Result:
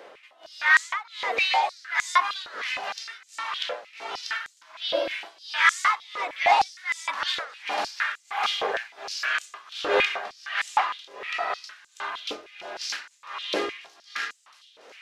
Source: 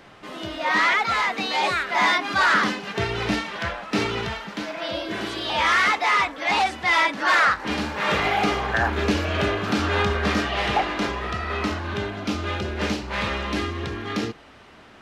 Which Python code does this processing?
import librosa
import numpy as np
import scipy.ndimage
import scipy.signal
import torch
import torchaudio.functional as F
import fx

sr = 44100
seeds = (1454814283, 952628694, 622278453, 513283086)

y = x * (1.0 - 0.95 / 2.0 + 0.95 / 2.0 * np.cos(2.0 * np.pi * 1.4 * (np.arange(len(x)) / sr)))
y = fx.echo_wet_highpass(y, sr, ms=999, feedback_pct=69, hz=4900.0, wet_db=-16)
y = fx.filter_held_highpass(y, sr, hz=6.5, low_hz=490.0, high_hz=7400.0)
y = F.gain(torch.from_numpy(y), -1.5).numpy()